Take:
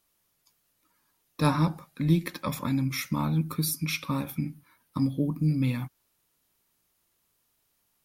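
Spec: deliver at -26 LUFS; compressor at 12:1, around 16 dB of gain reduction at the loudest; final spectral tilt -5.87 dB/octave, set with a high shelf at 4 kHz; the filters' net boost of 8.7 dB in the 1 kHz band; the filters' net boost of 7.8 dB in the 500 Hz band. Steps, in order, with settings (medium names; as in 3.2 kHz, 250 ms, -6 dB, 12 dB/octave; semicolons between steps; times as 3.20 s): peaking EQ 500 Hz +7.5 dB; peaking EQ 1 kHz +8.5 dB; treble shelf 4 kHz -5.5 dB; compression 12:1, threshold -30 dBFS; trim +10 dB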